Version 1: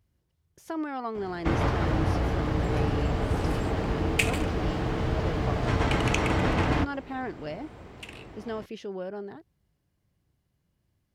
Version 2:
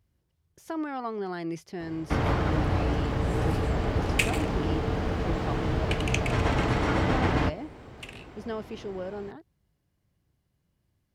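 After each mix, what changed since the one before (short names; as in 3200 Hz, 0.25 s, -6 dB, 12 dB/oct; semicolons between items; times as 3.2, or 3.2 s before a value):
first sound: entry +0.65 s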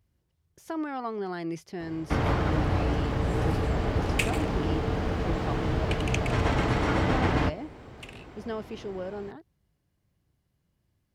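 second sound: send off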